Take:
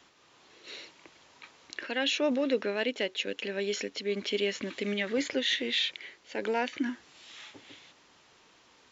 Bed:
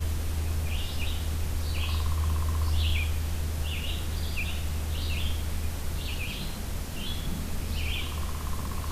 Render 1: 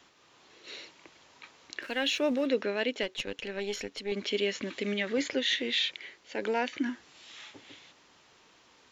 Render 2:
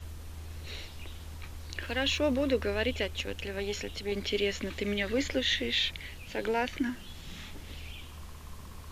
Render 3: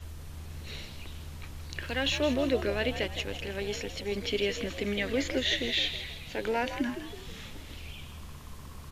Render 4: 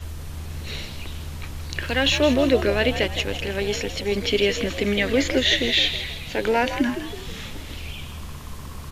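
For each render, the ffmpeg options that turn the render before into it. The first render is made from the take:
-filter_complex "[0:a]asettb=1/sr,asplit=3[a][b][c];[a]atrim=end=1.824[d];[b]atrim=start=1.82:end=2.46,asetpts=PTS-STARTPTS,afade=t=in:d=0.004:c=qsin,afade=t=out:st=0.636:d=0.004:c=qsin,aeval=exprs='sgn(val(0))*max(abs(val(0))-0.00251,0)':c=same[e];[c]atrim=start=2.456[f];[d][e]acrossfade=d=0.004:c1=hsin:c2=qsin[g];[g][f]acrossfade=d=0.004:c1=qsin:c2=hsin,asettb=1/sr,asplit=3[h][i][j];[h]atrim=end=3.034[k];[i]atrim=start=3.03:end=4.12,asetpts=PTS-STARTPTS,afade=t=in:d=0.004:c=qsin,afade=t=out:st=1.086:d=0.004:c=qsin,aeval=exprs='(tanh(10*val(0)+0.6)-tanh(0.6))/10':c=same[l];[j]atrim=start=4.116[m];[k][l]acrossfade=d=0.004:c1=hsin:c2=qsin[n];[n][m]acrossfade=d=0.004:c1=qsin:c2=hsin"
-filter_complex "[1:a]volume=-13.5dB[a];[0:a][a]amix=inputs=2:normalize=0"
-filter_complex "[0:a]asplit=6[a][b][c][d][e][f];[b]adelay=161,afreqshift=67,volume=-10.5dB[g];[c]adelay=322,afreqshift=134,volume=-17.4dB[h];[d]adelay=483,afreqshift=201,volume=-24.4dB[i];[e]adelay=644,afreqshift=268,volume=-31.3dB[j];[f]adelay=805,afreqshift=335,volume=-38.2dB[k];[a][g][h][i][j][k]amix=inputs=6:normalize=0"
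-af "volume=9dB"

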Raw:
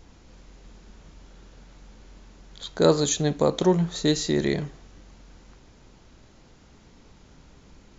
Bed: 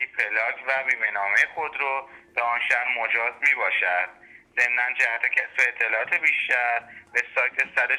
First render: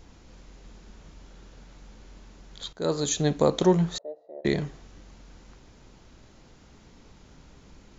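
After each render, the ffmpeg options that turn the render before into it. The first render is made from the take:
-filter_complex "[0:a]asettb=1/sr,asplit=3[a][b][c];[a]atrim=end=3.984[d];[b]atrim=start=3.98:end=4.45,asetpts=PTS-STARTPTS,afade=t=in:d=0.004:c=qsin,afade=t=out:st=0.466:d=0.004:c=qsin,asuperpass=centerf=620:order=4:qfactor=3.6[e];[c]atrim=start=4.446[f];[d][e]acrossfade=d=0.004:c1=hsin:c2=qsin[g];[g][f]acrossfade=d=0.004:c1=qsin:c2=hsin,asplit=2[h][i];[h]atrim=end=2.73,asetpts=PTS-STARTPTS,afade=t=out:st=2.726:d=0.004:c=hsin:silence=0.133352[j];[i]atrim=start=2.73,asetpts=PTS-STARTPTS,afade=t=in:d=0.53:silence=0.133352[k];[j][k]concat=n=2:v=0:a=1"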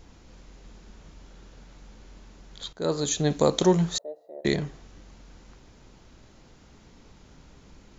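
-filter_complex "[0:a]asettb=1/sr,asplit=3[a][b][c];[a]atrim=end=3.304[d];[b]atrim=start=3.3:end=4.56,asetpts=PTS-STARTPTS,afade=t=in:d=0.004:c=qsin,afade=t=out:st=1.256:d=0.004:c=qsin,highshelf=f=4.8k:g=11[e];[c]atrim=start=4.556[f];[d][e]acrossfade=d=0.004:c1=hsin:c2=qsin[g];[g][f]acrossfade=d=0.004:c1=qsin:c2=hsin"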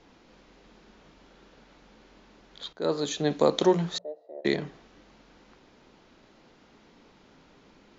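-filter_complex "[0:a]acrossover=split=180 5400:gain=0.178 1 0.0631[a][b][c];[a][b][c]amix=inputs=3:normalize=0,bandreject=f=60:t=h:w=6,bandreject=f=120:t=h:w=6,bandreject=f=180:t=h:w=6"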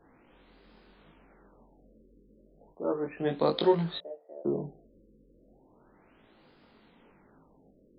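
-af "flanger=delay=18.5:depth=4.3:speed=0.8,afftfilt=real='re*lt(b*sr/1024,550*pow(5200/550,0.5+0.5*sin(2*PI*0.34*pts/sr)))':imag='im*lt(b*sr/1024,550*pow(5200/550,0.5+0.5*sin(2*PI*0.34*pts/sr)))':win_size=1024:overlap=0.75"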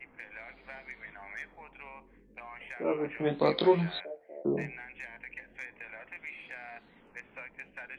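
-filter_complex "[1:a]volume=-22.5dB[a];[0:a][a]amix=inputs=2:normalize=0"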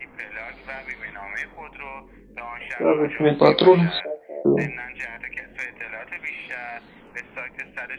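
-af "volume=11.5dB,alimiter=limit=-2dB:level=0:latency=1"

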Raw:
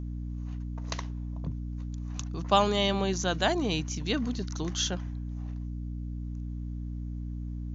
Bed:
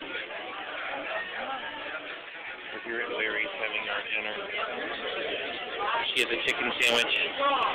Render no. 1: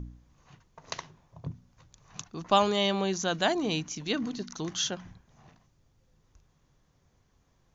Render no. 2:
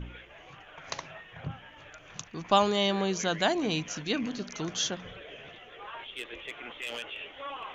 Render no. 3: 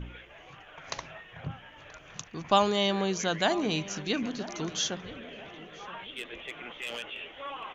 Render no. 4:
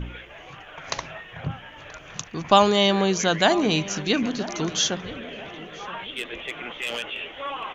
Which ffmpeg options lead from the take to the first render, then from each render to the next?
-af "bandreject=f=60:t=h:w=4,bandreject=f=120:t=h:w=4,bandreject=f=180:t=h:w=4,bandreject=f=240:t=h:w=4,bandreject=f=300:t=h:w=4"
-filter_complex "[1:a]volume=-14dB[a];[0:a][a]amix=inputs=2:normalize=0"
-filter_complex "[0:a]asplit=2[a][b];[b]adelay=979,lowpass=f=1.9k:p=1,volume=-16dB,asplit=2[c][d];[d]adelay=979,lowpass=f=1.9k:p=1,volume=0.4,asplit=2[e][f];[f]adelay=979,lowpass=f=1.9k:p=1,volume=0.4,asplit=2[g][h];[h]adelay=979,lowpass=f=1.9k:p=1,volume=0.4[i];[a][c][e][g][i]amix=inputs=5:normalize=0"
-af "volume=7.5dB,alimiter=limit=-2dB:level=0:latency=1"

